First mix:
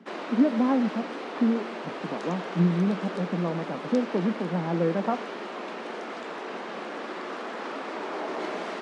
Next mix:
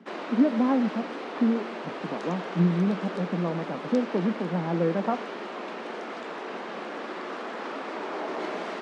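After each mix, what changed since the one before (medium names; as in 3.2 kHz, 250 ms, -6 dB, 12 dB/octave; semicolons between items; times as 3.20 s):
master: add treble shelf 8.1 kHz -5.5 dB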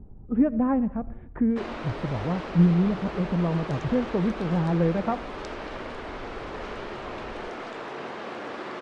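background: entry +1.50 s; master: remove steep high-pass 180 Hz 48 dB/octave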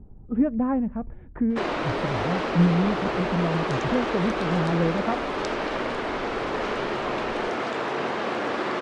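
speech: send off; background +8.5 dB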